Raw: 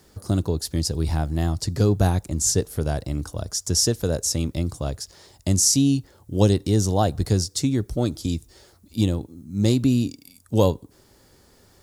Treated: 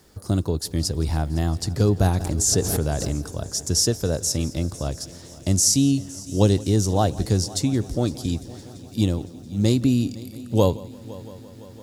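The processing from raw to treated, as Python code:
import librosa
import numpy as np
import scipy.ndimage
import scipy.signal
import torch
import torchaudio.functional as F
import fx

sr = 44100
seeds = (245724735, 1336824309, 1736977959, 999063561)

y = fx.echo_heads(x, sr, ms=170, heads='first and third', feedback_pct=71, wet_db=-21)
y = fx.pre_swell(y, sr, db_per_s=34.0, at=(2.16, 3.2))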